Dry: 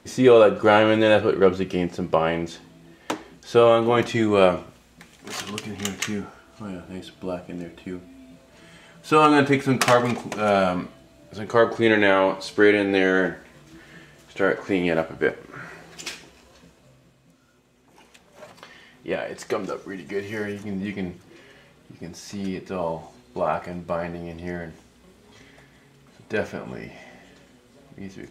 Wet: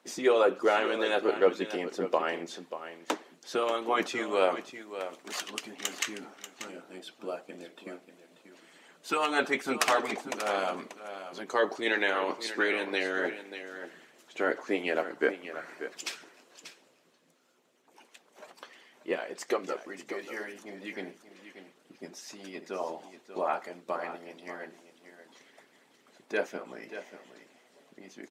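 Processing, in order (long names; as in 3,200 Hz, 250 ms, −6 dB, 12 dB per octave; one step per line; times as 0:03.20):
high-pass filter 240 Hz 24 dB per octave
harmonic and percussive parts rebalanced harmonic −15 dB
in parallel at −2 dB: brickwall limiter −15 dBFS, peak gain reduction 9.5 dB
on the sum: single-tap delay 587 ms −11.5 dB
level −7 dB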